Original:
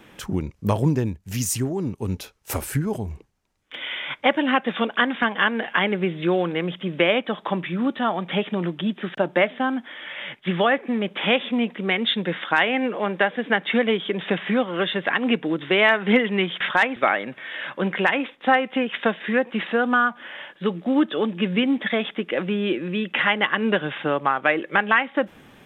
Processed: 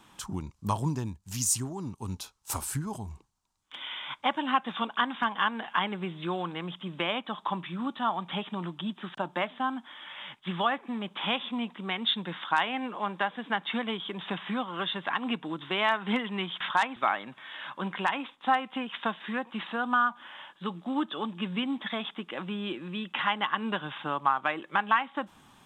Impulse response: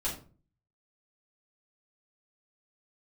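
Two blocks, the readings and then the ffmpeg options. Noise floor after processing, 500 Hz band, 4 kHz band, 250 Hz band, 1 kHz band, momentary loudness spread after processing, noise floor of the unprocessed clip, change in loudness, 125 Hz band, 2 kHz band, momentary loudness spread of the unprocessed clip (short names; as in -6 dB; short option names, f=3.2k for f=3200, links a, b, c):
-61 dBFS, -14.0 dB, -5.5 dB, -10.0 dB, -3.5 dB, 11 LU, -52 dBFS, -8.5 dB, -9.0 dB, -10.0 dB, 9 LU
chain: -af "equalizer=f=500:t=o:w=1:g=-10,equalizer=f=1k:t=o:w=1:g=11,equalizer=f=2k:t=o:w=1:g=-7,equalizer=f=4k:t=o:w=1:g=5,equalizer=f=8k:t=o:w=1:g=9,volume=-8.5dB"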